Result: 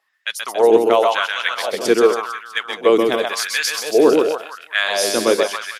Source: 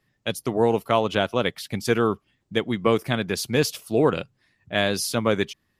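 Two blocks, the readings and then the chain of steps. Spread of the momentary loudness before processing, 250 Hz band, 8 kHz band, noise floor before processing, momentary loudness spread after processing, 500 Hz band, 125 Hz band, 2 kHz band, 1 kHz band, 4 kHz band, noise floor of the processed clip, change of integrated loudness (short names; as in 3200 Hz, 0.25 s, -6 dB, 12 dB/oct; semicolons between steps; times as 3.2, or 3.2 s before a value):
7 LU, +3.0 dB, +8.0 dB, -72 dBFS, 11 LU, +8.0 dB, under -10 dB, +8.0 dB, +6.5 dB, +7.0 dB, -50 dBFS, +6.5 dB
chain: reverse bouncing-ball echo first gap 0.13 s, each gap 1.15×, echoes 5; dynamic EQ 6400 Hz, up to +5 dB, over -40 dBFS, Q 0.81; LFO high-pass sine 0.91 Hz 330–1700 Hz; gain +1.5 dB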